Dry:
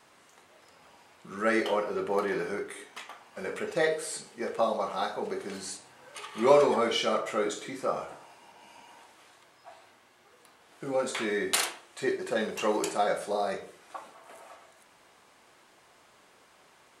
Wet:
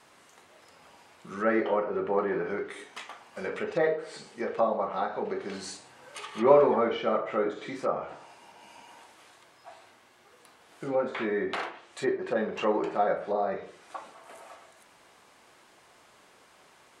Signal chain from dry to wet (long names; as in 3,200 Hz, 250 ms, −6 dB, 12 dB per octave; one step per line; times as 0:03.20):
treble cut that deepens with the level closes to 1,600 Hz, closed at −27 dBFS
level +1.5 dB